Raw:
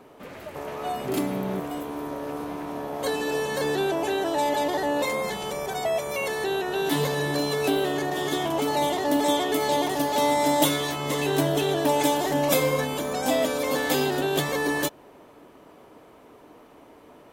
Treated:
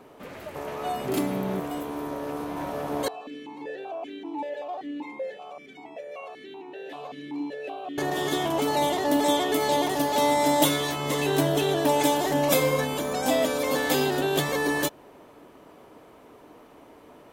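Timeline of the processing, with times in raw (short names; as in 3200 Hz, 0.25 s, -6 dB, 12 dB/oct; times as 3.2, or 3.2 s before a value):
2.05–2.51 echo throw 0.51 s, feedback 70%, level -1.5 dB
3.08–7.98 vowel sequencer 5.2 Hz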